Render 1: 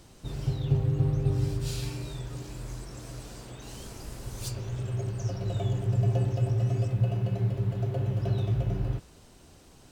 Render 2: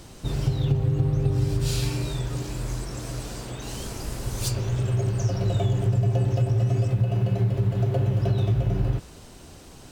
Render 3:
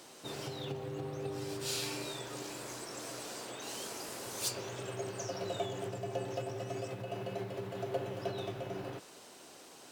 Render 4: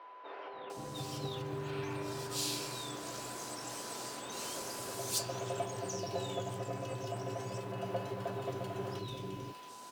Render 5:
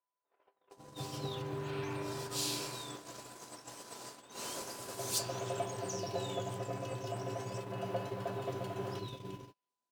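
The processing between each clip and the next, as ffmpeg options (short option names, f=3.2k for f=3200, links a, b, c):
-af "acompressor=threshold=-27dB:ratio=6,volume=8.5dB"
-af "highpass=380,volume=-4dB"
-filter_complex "[0:a]aeval=exprs='val(0)+0.00282*sin(2*PI*1000*n/s)':c=same,acrossover=split=440|2400[a][b][c];[a]adelay=530[d];[c]adelay=700[e];[d][b][e]amix=inputs=3:normalize=0,volume=1.5dB"
-af "agate=range=-42dB:threshold=-41dB:ratio=16:detection=peak"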